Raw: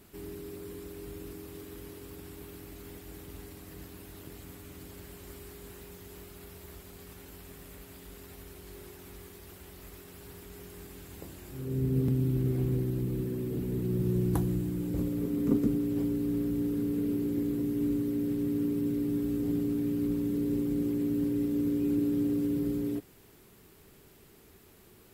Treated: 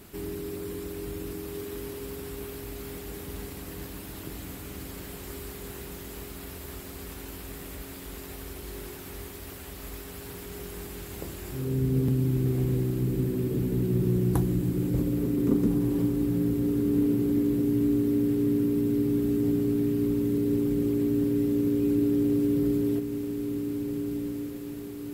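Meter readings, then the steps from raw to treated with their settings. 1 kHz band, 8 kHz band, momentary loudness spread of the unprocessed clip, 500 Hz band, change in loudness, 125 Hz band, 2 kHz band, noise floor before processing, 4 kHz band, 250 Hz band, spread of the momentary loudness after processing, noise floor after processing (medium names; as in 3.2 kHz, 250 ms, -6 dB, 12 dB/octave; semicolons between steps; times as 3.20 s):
+6.0 dB, +7.0 dB, 20 LU, +6.0 dB, +3.0 dB, +4.5 dB, +7.0 dB, -57 dBFS, +7.0 dB, +4.5 dB, 15 LU, -41 dBFS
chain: in parallel at +2.5 dB: compression, threshold -37 dBFS, peak gain reduction 15.5 dB; on the sum: echo that smears into a reverb 1536 ms, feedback 47%, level -7 dB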